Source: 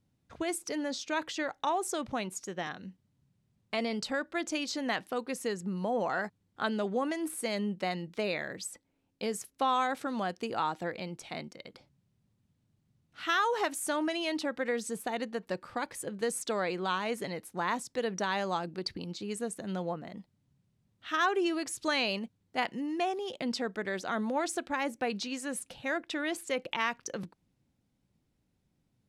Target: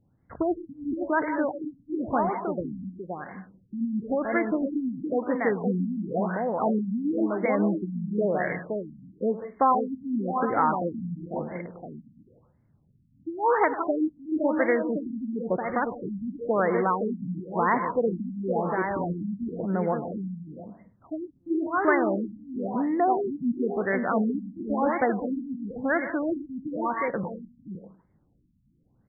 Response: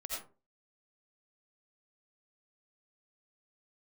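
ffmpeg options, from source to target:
-filter_complex "[0:a]aecho=1:1:518:0.531,asplit=2[link_01][link_02];[1:a]atrim=start_sample=2205,asetrate=70560,aresample=44100,adelay=103[link_03];[link_02][link_03]afir=irnorm=-1:irlink=0,volume=-5dB[link_04];[link_01][link_04]amix=inputs=2:normalize=0,afftfilt=real='re*lt(b*sr/1024,260*pow(2300/260,0.5+0.5*sin(2*PI*0.97*pts/sr)))':imag='im*lt(b*sr/1024,260*pow(2300/260,0.5+0.5*sin(2*PI*0.97*pts/sr)))':win_size=1024:overlap=0.75,volume=8dB"

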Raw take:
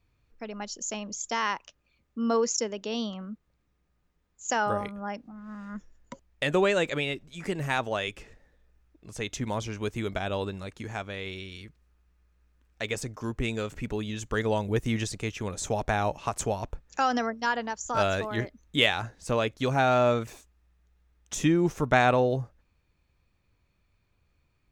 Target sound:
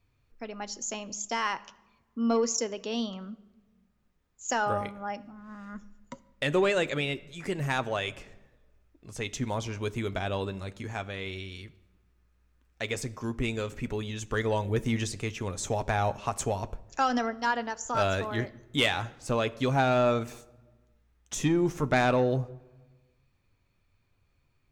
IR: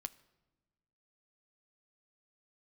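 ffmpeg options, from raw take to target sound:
-filter_complex "[0:a]asoftclip=type=tanh:threshold=-14dB[link_01];[1:a]atrim=start_sample=2205[link_02];[link_01][link_02]afir=irnorm=-1:irlink=0,volume=3dB"

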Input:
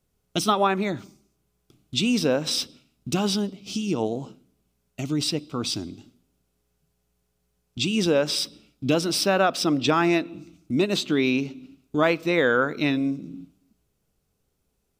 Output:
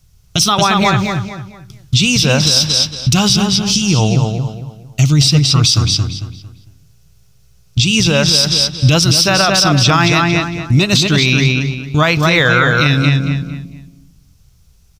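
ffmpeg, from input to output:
ffmpeg -i in.wav -filter_complex "[0:a]firequalizer=gain_entry='entry(120,0);entry(240,-21);entry(440,-21);entry(720,-16);entry(1100,-13);entry(5700,-2);entry(8100,-9)':delay=0.05:min_phase=1,asplit=2[link_01][link_02];[link_02]adelay=226,lowpass=frequency=3800:poles=1,volume=-4dB,asplit=2[link_03][link_04];[link_04]adelay=226,lowpass=frequency=3800:poles=1,volume=0.34,asplit=2[link_05][link_06];[link_06]adelay=226,lowpass=frequency=3800:poles=1,volume=0.34,asplit=2[link_07][link_08];[link_08]adelay=226,lowpass=frequency=3800:poles=1,volume=0.34[link_09];[link_03][link_05][link_07][link_09]amix=inputs=4:normalize=0[link_10];[link_01][link_10]amix=inputs=2:normalize=0,alimiter=level_in=26.5dB:limit=-1dB:release=50:level=0:latency=1,volume=-1dB" out.wav

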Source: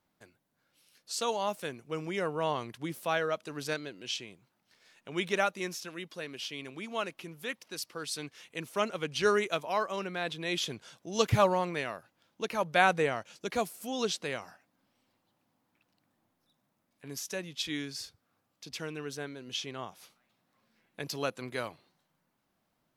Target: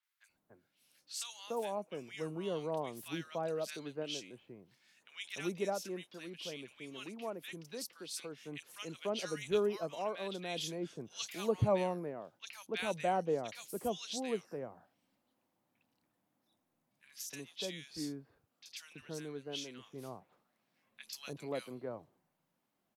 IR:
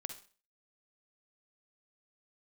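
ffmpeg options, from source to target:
-filter_complex "[0:a]acrossover=split=150|940|2300[link_01][link_02][link_03][link_04];[link_01]tremolo=f=0.96:d=0.74[link_05];[link_03]acompressor=threshold=-55dB:ratio=6[link_06];[link_05][link_02][link_06][link_04]amix=inputs=4:normalize=0,acrossover=split=1400|4500[link_07][link_08][link_09];[link_09]adelay=30[link_10];[link_07]adelay=290[link_11];[link_11][link_08][link_10]amix=inputs=3:normalize=0,volume=-3.5dB"

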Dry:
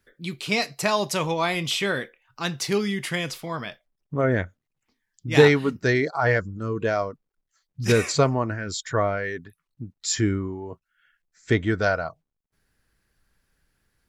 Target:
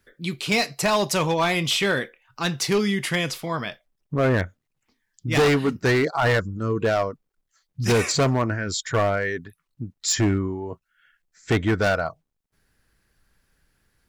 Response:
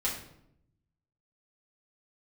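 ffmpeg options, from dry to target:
-af "asoftclip=type=hard:threshold=-19dB,volume=3.5dB"

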